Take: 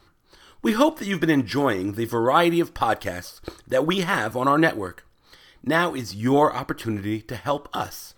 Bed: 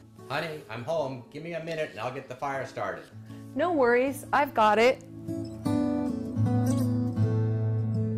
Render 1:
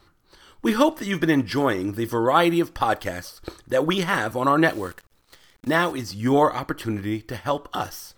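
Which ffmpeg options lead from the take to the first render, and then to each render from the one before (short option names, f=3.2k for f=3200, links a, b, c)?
-filter_complex "[0:a]asettb=1/sr,asplit=3[a][b][c];[a]atrim=end=4.654[d];[b]atrim=start=4.65:end=5.92,asetpts=PTS-STARTPTS,afade=t=in:d=0.004:c=qsin,afade=t=out:st=1.266:d=0.004:c=qsin,acrusher=bits=8:dc=4:mix=0:aa=0.000001[e];[c]atrim=start=5.916[f];[d][e]acrossfade=d=0.004:c1=hsin:c2=qsin[g];[g][f]acrossfade=d=0.004:c1=qsin:c2=hsin"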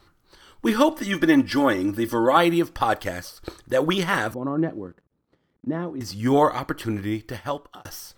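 -filter_complex "[0:a]asettb=1/sr,asplit=3[a][b][c];[a]atrim=end=0.904[d];[b]atrim=start=0.9:end=2.37,asetpts=PTS-STARTPTS,afade=t=in:d=0.004:c=qsin,afade=t=out:st=1.466:d=0.004:c=qsin,aecho=1:1:3.5:0.56,atrim=end_sample=64827[e];[c]atrim=start=2.366[f];[d][e]acrossfade=d=0.004:c1=hsin:c2=qsin[g];[g][f]acrossfade=d=0.004:c1=qsin:c2=hsin,asettb=1/sr,asplit=3[h][i][j];[h]atrim=end=4.344[k];[i]atrim=start=4.34:end=6.01,asetpts=PTS-STARTPTS,afade=t=in:d=0.004:c=qsin,afade=t=out:st=1.666:d=0.004:c=qsin,bandpass=f=210:t=q:w=1.1[l];[j]atrim=start=6.006[m];[k][l]acrossfade=d=0.004:c1=hsin:c2=qsin[n];[n][m]acrossfade=d=0.004:c1=qsin:c2=hsin,asplit=2[o][p];[o]atrim=end=7.85,asetpts=PTS-STARTPTS,afade=t=out:st=7.08:d=0.77:c=qsin[q];[p]atrim=start=7.85,asetpts=PTS-STARTPTS,afade=t=in:d=0.004:c=hsin[r];[q][r]concat=n=2:v=0:a=1"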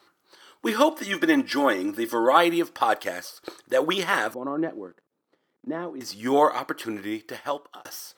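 -af "highpass=330"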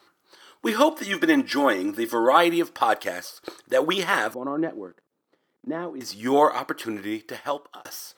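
-af "volume=1dB,alimiter=limit=-3dB:level=0:latency=1"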